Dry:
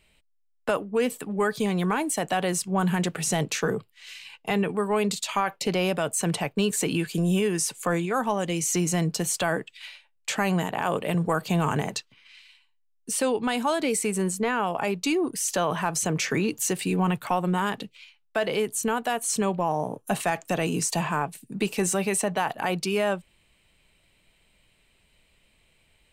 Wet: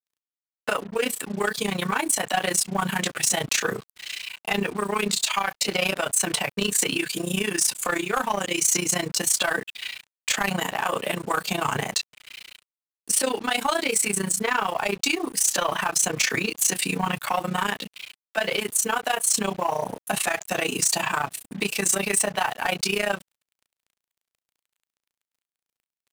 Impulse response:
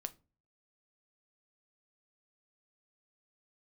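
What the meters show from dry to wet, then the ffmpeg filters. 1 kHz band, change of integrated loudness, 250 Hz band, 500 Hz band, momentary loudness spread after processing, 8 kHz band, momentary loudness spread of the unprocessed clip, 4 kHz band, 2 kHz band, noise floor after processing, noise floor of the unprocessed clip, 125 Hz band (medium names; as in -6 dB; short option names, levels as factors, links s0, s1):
+1.0 dB, +2.0 dB, -4.0 dB, -2.0 dB, 8 LU, +6.5 dB, 6 LU, +6.5 dB, +5.0 dB, under -85 dBFS, -67 dBFS, -6.0 dB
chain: -filter_complex "[0:a]highpass=f=92:w=0.5412,highpass=f=92:w=1.3066,asplit=2[s0][s1];[s1]adelay=15,volume=0.75[s2];[s0][s2]amix=inputs=2:normalize=0,asplit=2[s3][s4];[s4]alimiter=limit=0.141:level=0:latency=1:release=124,volume=0.794[s5];[s3][s5]amix=inputs=2:normalize=0,tremolo=f=29:d=0.889,tiltshelf=f=740:g=-6.5,acrusher=bits=6:mix=0:aa=0.5,asoftclip=type=tanh:threshold=0.211"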